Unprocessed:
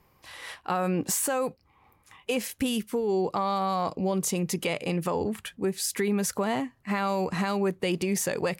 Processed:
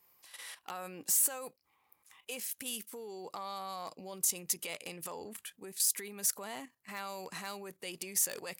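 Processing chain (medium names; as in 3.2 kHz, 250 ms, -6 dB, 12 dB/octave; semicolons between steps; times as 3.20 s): level held to a coarse grid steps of 11 dB; wavefolder -24 dBFS; RIAA curve recording; trim -7.5 dB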